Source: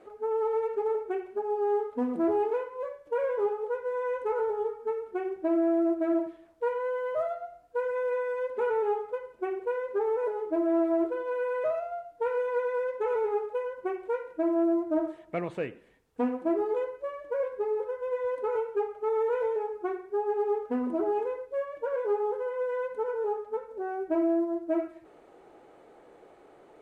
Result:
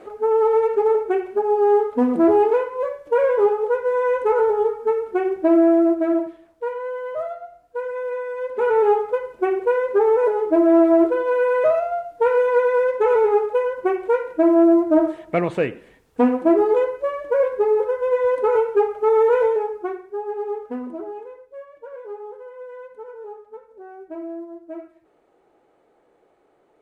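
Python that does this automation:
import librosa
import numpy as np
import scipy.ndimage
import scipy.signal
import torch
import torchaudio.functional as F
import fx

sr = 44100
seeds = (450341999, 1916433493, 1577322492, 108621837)

y = fx.gain(x, sr, db=fx.line((5.62, 11.0), (6.65, 2.5), (8.33, 2.5), (8.82, 11.5), (19.4, 11.5), (20.13, 1.0), (20.71, 1.0), (21.21, -6.5)))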